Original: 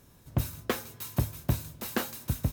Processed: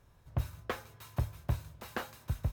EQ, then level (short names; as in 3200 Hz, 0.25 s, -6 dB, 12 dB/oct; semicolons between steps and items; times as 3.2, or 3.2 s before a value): bell 250 Hz -13.5 dB 1.9 oct; high shelf 2000 Hz -10.5 dB; high shelf 6500 Hz -8 dB; +1.0 dB